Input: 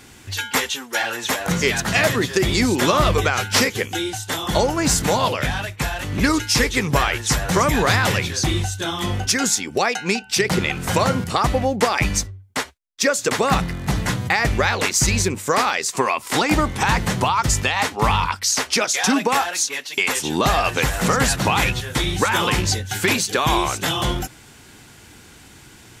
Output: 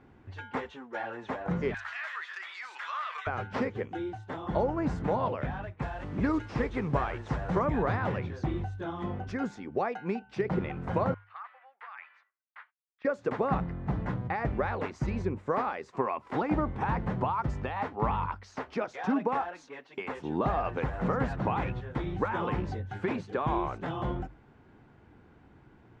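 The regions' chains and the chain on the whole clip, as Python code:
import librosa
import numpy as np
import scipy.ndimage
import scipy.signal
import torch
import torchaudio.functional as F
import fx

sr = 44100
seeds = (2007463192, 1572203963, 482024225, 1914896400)

y = fx.chain(x, sr, fx.highpass(hz=1400.0, slope=24),
    fx.env_flatten(amount_pct=70), at=(1.74, 3.27))
y = fx.chain(y, sr, fx.delta_mod(bps=64000, step_db=-29.0),
    fx.brickwall_lowpass(high_hz=10000.0),
    fx.high_shelf(hz=4900.0, db=10.0), at=(5.82, 7.59))
y = fx.chain(y, sr, fx.highpass(hz=1400.0, slope=24),
    fx.clip_hard(threshold_db=-8.0),
    fx.air_absorb(metres=440.0), at=(11.14, 13.05))
y = scipy.signal.sosfilt(scipy.signal.butter(2, 1100.0, 'lowpass', fs=sr, output='sos'), y)
y = fx.hum_notches(y, sr, base_hz=50, count=2)
y = y * 10.0 ** (-8.5 / 20.0)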